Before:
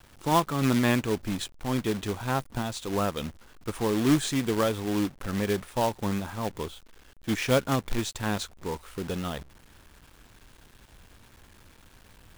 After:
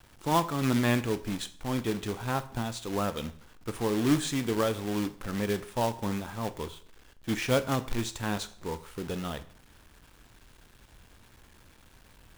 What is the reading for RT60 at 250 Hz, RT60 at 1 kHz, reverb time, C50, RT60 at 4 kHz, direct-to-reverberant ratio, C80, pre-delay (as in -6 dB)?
0.60 s, 0.50 s, 0.50 s, 16.0 dB, 0.50 s, 11.5 dB, 19.0 dB, 6 ms